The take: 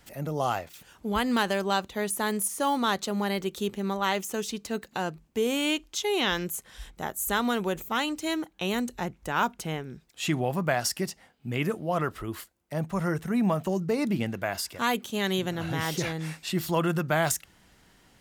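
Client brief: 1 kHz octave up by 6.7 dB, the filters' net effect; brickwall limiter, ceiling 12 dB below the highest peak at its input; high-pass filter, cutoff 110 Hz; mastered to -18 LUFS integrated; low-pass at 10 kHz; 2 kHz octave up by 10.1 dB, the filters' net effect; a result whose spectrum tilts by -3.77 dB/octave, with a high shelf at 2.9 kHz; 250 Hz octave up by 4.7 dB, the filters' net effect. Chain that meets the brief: high-pass 110 Hz; low-pass 10 kHz; peaking EQ 250 Hz +6 dB; peaking EQ 1 kHz +5 dB; peaking EQ 2 kHz +9 dB; treble shelf 2.9 kHz +6 dB; trim +8 dB; peak limiter -6.5 dBFS

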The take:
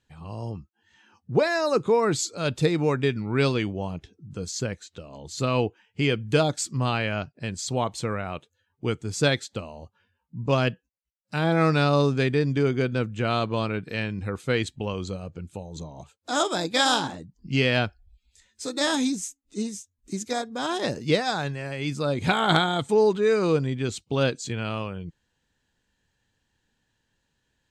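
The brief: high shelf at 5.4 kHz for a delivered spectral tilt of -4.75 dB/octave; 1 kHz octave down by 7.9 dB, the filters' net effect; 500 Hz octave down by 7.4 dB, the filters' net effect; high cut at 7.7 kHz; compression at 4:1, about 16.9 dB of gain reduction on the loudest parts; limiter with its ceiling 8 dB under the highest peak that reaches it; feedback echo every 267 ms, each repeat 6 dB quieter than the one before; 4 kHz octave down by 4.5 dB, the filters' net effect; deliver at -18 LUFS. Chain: low-pass 7.7 kHz; peaking EQ 500 Hz -7 dB; peaking EQ 1 kHz -8.5 dB; peaking EQ 4 kHz -7.5 dB; treble shelf 5.4 kHz +7 dB; compression 4:1, threshold -41 dBFS; peak limiter -34 dBFS; feedback delay 267 ms, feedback 50%, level -6 dB; trim +25.5 dB

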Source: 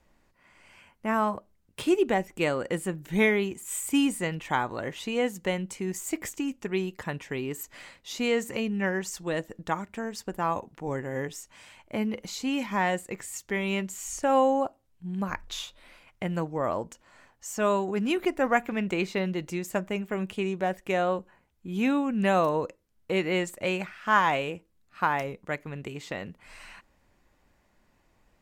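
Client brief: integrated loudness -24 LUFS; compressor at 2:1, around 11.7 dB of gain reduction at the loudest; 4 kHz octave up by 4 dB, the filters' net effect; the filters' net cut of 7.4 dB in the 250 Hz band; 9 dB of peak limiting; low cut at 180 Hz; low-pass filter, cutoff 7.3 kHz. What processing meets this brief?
high-pass 180 Hz; low-pass 7.3 kHz; peaking EQ 250 Hz -8.5 dB; peaking EQ 4 kHz +6 dB; compression 2:1, threshold -40 dBFS; trim +17 dB; peak limiter -11.5 dBFS

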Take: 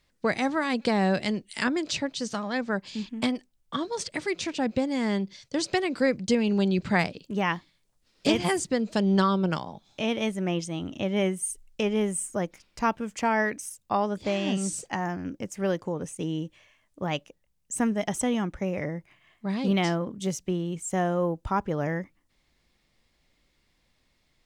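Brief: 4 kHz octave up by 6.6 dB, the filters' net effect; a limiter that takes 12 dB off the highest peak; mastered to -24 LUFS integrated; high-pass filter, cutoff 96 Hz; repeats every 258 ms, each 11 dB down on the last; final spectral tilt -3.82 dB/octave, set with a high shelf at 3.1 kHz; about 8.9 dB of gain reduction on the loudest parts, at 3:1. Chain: high-pass 96 Hz; treble shelf 3.1 kHz +5.5 dB; peaking EQ 4 kHz +4.5 dB; compression 3:1, threshold -28 dBFS; peak limiter -23 dBFS; feedback delay 258 ms, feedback 28%, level -11 dB; trim +9 dB

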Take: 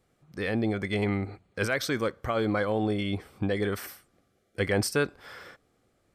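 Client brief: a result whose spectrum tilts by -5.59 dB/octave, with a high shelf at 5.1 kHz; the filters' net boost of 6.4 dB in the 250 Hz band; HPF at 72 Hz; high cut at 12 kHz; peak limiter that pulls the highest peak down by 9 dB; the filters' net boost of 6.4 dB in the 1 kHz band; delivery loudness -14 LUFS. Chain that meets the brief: high-pass 72 Hz; low-pass 12 kHz; peaking EQ 250 Hz +8 dB; peaking EQ 1 kHz +9 dB; treble shelf 5.1 kHz -9 dB; trim +15 dB; peak limiter -2.5 dBFS

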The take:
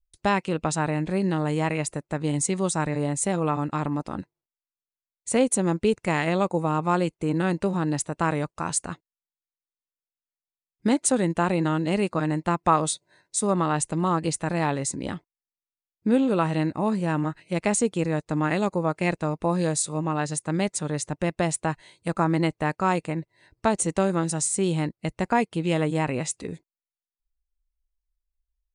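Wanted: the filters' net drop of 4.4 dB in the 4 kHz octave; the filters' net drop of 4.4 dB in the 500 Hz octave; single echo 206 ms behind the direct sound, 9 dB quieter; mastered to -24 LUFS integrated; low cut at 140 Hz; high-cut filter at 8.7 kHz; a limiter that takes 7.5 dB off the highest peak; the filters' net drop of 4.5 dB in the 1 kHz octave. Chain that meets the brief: high-pass 140 Hz; low-pass 8.7 kHz; peaking EQ 500 Hz -4.5 dB; peaking EQ 1 kHz -4 dB; peaking EQ 4 kHz -5.5 dB; peak limiter -18.5 dBFS; delay 206 ms -9 dB; trim +5.5 dB

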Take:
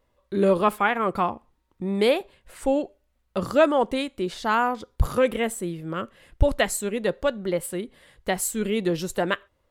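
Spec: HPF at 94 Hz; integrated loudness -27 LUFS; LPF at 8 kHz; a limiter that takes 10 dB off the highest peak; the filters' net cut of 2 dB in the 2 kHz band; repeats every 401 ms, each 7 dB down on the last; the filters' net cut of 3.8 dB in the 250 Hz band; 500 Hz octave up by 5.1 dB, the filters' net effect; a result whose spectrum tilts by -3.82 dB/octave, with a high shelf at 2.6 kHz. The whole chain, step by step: high-pass 94 Hz; low-pass 8 kHz; peaking EQ 250 Hz -8.5 dB; peaking EQ 500 Hz +8 dB; peaking EQ 2 kHz -5.5 dB; treble shelf 2.6 kHz +5.5 dB; peak limiter -14 dBFS; feedback delay 401 ms, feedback 45%, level -7 dB; trim -1.5 dB

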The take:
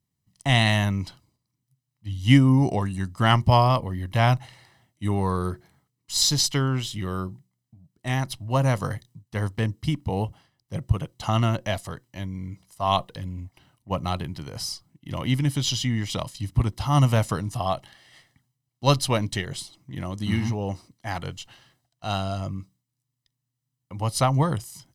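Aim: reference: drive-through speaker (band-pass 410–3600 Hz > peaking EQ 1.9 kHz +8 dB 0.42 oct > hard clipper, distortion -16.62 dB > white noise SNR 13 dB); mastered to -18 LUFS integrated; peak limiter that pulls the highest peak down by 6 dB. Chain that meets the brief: peak limiter -9.5 dBFS; band-pass 410–3600 Hz; peaking EQ 1.9 kHz +8 dB 0.42 oct; hard clipper -17 dBFS; white noise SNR 13 dB; trim +12.5 dB

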